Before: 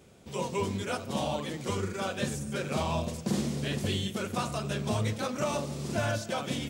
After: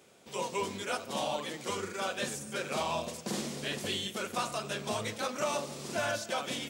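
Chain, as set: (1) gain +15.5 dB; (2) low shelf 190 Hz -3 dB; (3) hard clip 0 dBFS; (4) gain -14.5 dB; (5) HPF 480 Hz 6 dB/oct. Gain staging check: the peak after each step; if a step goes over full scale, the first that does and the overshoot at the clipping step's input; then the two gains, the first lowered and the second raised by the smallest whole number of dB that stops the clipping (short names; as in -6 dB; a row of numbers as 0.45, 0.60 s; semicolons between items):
-1.5, -2.0, -2.0, -16.5, -20.0 dBFS; no overload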